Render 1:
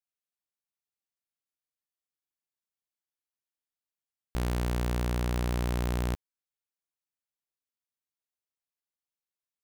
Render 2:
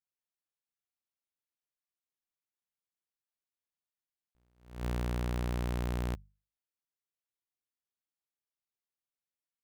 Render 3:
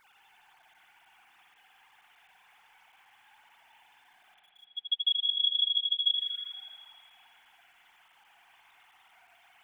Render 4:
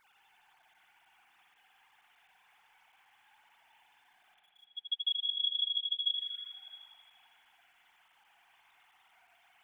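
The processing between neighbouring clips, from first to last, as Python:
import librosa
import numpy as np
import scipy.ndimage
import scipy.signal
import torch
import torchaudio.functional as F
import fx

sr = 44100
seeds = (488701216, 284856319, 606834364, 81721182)

y1 = fx.bass_treble(x, sr, bass_db=1, treble_db=-3)
y1 = fx.hum_notches(y1, sr, base_hz=50, count=4)
y1 = fx.attack_slew(y1, sr, db_per_s=130.0)
y1 = F.gain(torch.from_numpy(y1), -4.5).numpy()
y2 = fx.sine_speech(y1, sr)
y2 = fx.quant_dither(y2, sr, seeds[0], bits=12, dither='none')
y2 = fx.rev_spring(y2, sr, rt60_s=1.8, pass_ms=(56,), chirp_ms=70, drr_db=-1.0)
y2 = F.gain(torch.from_numpy(y2), 2.0).numpy()
y3 = y2 + 10.0 ** (-23.5 / 20.0) * np.pad(y2, (int(666 * sr / 1000.0), 0))[:len(y2)]
y3 = F.gain(torch.from_numpy(y3), -5.0).numpy()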